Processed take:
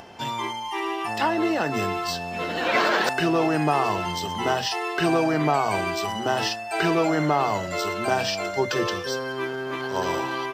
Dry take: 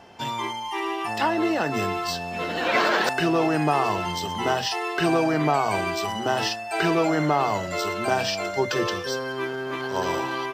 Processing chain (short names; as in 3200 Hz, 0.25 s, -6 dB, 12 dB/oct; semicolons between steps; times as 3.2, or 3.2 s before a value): upward compressor, threshold -39 dBFS